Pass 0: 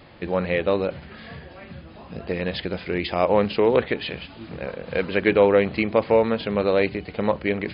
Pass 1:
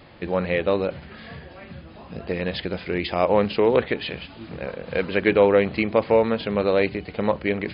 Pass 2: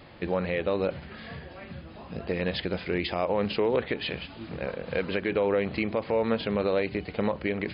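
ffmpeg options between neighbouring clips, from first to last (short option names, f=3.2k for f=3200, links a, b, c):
-af anull
-af "alimiter=limit=-14dB:level=0:latency=1:release=123,volume=-1.5dB"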